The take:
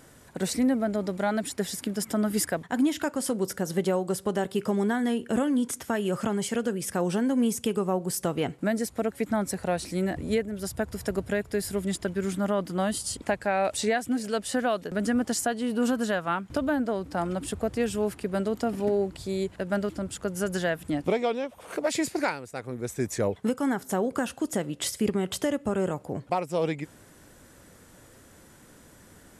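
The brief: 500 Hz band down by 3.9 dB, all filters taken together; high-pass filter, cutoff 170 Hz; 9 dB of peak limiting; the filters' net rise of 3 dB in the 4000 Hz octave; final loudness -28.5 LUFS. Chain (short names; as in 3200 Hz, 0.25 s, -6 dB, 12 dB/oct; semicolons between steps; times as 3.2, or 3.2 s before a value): HPF 170 Hz; bell 500 Hz -5 dB; bell 4000 Hz +4 dB; gain +4 dB; limiter -17.5 dBFS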